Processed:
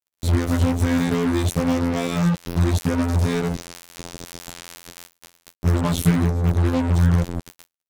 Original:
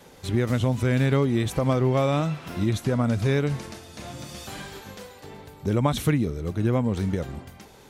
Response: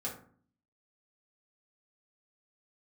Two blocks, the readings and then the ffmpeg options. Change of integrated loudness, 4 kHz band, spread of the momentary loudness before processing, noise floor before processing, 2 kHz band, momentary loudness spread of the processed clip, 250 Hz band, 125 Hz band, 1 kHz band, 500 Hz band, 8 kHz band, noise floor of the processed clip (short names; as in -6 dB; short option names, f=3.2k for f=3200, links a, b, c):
+3.5 dB, +3.0 dB, 18 LU, -49 dBFS, +2.5 dB, 18 LU, +4.0 dB, +3.5 dB, +1.5 dB, -1.0 dB, +6.5 dB, -85 dBFS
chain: -af "afftfilt=real='hypot(re,im)*cos(PI*b)':imag='0':win_size=2048:overlap=0.75,bass=f=250:g=14,treble=f=4k:g=9,acrusher=bits=3:mix=0:aa=0.5"